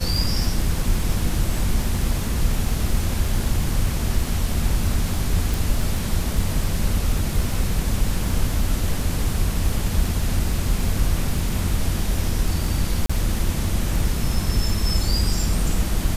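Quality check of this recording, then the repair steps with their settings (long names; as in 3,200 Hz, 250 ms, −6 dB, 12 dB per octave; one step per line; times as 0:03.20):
surface crackle 36 per second −27 dBFS
0:05.54: click
0:13.06–0:13.10: drop-out 35 ms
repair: click removal
repair the gap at 0:13.06, 35 ms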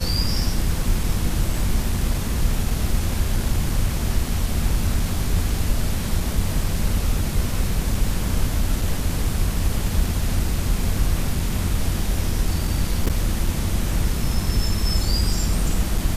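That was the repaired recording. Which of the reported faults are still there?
none of them is left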